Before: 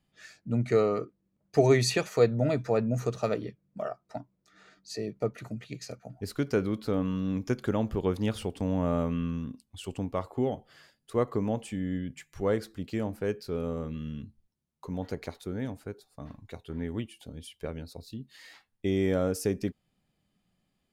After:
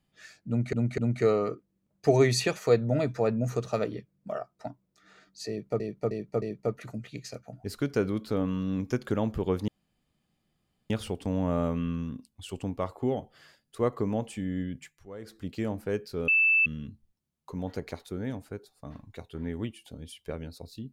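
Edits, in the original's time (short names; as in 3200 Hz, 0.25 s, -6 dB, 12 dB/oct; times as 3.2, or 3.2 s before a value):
0.48–0.73 loop, 3 plays
4.99–5.3 loop, 4 plays
8.25 insert room tone 1.22 s
12.15–12.78 dip -16 dB, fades 0.24 s
13.63–14.01 bleep 2640 Hz -19 dBFS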